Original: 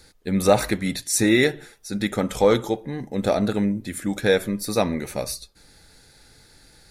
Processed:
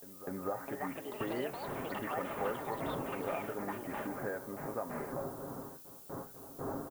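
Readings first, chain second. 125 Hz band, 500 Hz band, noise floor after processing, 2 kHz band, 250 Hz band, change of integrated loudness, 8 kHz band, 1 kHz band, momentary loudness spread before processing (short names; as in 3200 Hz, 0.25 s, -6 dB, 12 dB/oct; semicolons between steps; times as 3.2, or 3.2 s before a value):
-17.5 dB, -16.0 dB, -52 dBFS, -16.0 dB, -18.0 dB, -17.0 dB, -24.0 dB, -9.5 dB, 10 LU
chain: wind noise 370 Hz -29 dBFS; steep low-pass 1400 Hz 36 dB/oct; gate with hold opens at -26 dBFS; tilt +4 dB/oct; comb 7.4 ms, depth 55%; compressor 3:1, threshold -37 dBFS, peak gain reduction 16 dB; added noise violet -52 dBFS; echoes that change speed 0.499 s, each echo +7 st, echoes 2; pre-echo 0.248 s -14 dB; gain -2.5 dB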